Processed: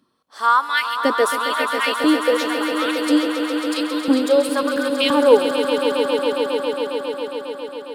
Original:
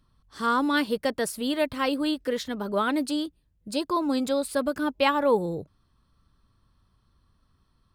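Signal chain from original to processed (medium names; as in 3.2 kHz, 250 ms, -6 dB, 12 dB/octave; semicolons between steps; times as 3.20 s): LFO high-pass saw up 0.98 Hz 250–3700 Hz; echo with a slow build-up 136 ms, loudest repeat 5, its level -10 dB; trim +4 dB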